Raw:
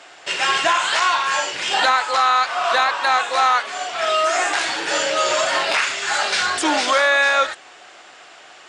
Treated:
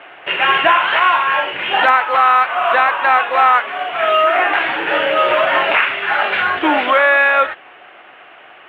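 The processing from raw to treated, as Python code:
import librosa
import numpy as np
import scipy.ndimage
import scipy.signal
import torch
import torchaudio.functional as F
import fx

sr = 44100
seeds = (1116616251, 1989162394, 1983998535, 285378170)

p1 = scipy.signal.sosfilt(scipy.signal.butter(8, 3000.0, 'lowpass', fs=sr, output='sos'), x)
p2 = fx.rider(p1, sr, range_db=4, speed_s=2.0)
p3 = p1 + (p2 * librosa.db_to_amplitude(0.0))
p4 = fx.quant_float(p3, sr, bits=6)
y = p4 * librosa.db_to_amplitude(-1.0)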